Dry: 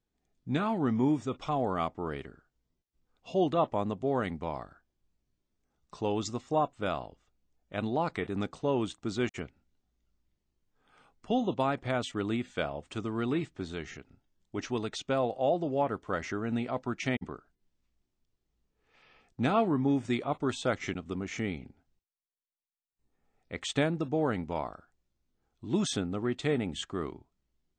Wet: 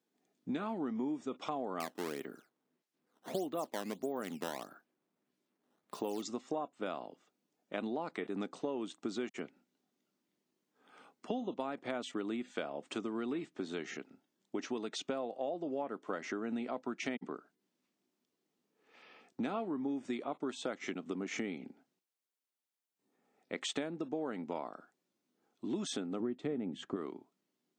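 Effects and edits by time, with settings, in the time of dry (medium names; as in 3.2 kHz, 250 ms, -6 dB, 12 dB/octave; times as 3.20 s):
1.80–6.22 s: decimation with a swept rate 11×, swing 160% 1.6 Hz
26.20–26.96 s: tilt EQ -3.5 dB/octave
whole clip: high-pass 220 Hz 24 dB/octave; bass shelf 440 Hz +5 dB; compression 6:1, threshold -37 dBFS; trim +2 dB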